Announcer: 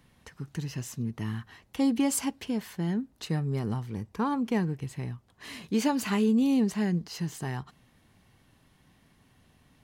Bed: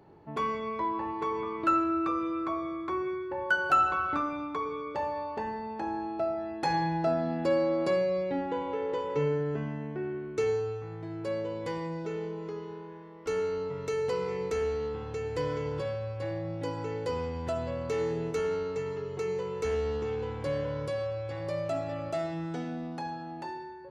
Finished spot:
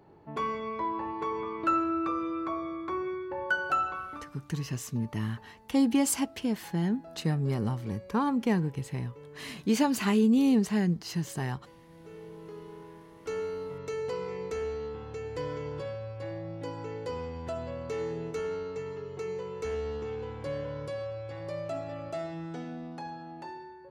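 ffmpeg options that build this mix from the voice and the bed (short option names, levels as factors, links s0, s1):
-filter_complex "[0:a]adelay=3950,volume=1.12[s0];[1:a]volume=6.68,afade=t=out:st=3.45:d=0.89:silence=0.1,afade=t=in:st=11.86:d=0.98:silence=0.133352[s1];[s0][s1]amix=inputs=2:normalize=0"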